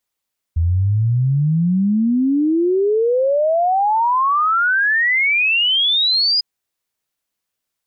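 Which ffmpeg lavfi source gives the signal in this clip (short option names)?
-f lavfi -i "aevalsrc='0.224*clip(min(t,5.85-t)/0.01,0,1)*sin(2*PI*80*5.85/log(5000/80)*(exp(log(5000/80)*t/5.85)-1))':d=5.85:s=44100"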